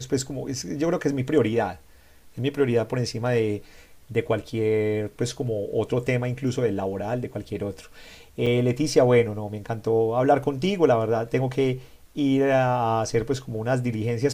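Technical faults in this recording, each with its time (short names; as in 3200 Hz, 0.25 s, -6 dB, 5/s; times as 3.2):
8.46–8.47 gap 5.7 ms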